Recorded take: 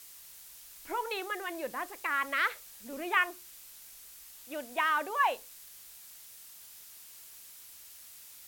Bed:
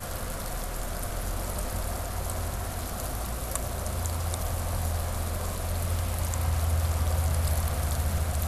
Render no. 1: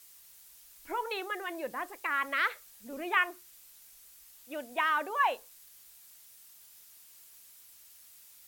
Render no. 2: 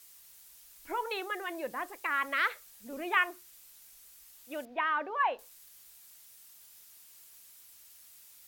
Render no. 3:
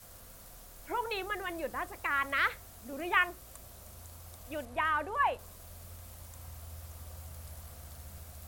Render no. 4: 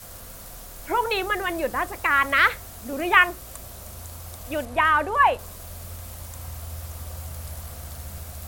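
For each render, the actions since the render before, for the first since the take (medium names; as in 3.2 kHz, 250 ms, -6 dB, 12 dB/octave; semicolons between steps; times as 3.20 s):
noise reduction 6 dB, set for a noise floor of -52 dBFS
4.65–5.39 s: distance through air 290 m
add bed -21 dB
trim +11 dB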